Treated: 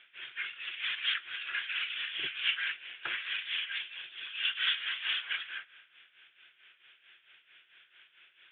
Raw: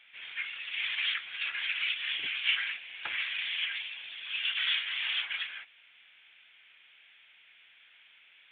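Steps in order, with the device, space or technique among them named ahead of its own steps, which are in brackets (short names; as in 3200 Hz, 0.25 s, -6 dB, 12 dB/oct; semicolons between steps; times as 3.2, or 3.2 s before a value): combo amplifier with spring reverb and tremolo (spring tank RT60 1.4 s, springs 38 ms, chirp 55 ms, DRR 15 dB; tremolo 4.5 Hz, depth 72%; speaker cabinet 99–3900 Hz, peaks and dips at 130 Hz +7 dB, 230 Hz -8 dB, 360 Hz +8 dB, 840 Hz -6 dB, 1500 Hz +5 dB, 2200 Hz -5 dB); gain +3 dB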